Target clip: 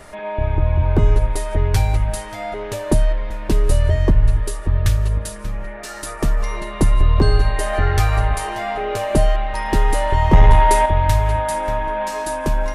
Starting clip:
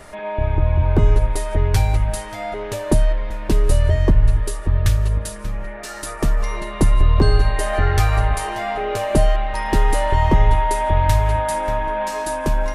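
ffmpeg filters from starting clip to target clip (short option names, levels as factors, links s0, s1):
-filter_complex "[0:a]asettb=1/sr,asplit=3[s0][s1][s2];[s0]atrim=end=10.334[s3];[s1]atrim=start=10.33:end=10.86,asetpts=PTS-STARTPTS,afade=t=in:d=0.004:c=qsin,afade=t=out:st=0.526:d=0.004:c=qsin,acontrast=76[s4];[s2]atrim=start=10.856[s5];[s3][s4]acrossfade=d=0.004:c1=hsin:c2=qsin[s6];[s6][s5]acrossfade=d=0.004:c1=qsin:c2=hsin"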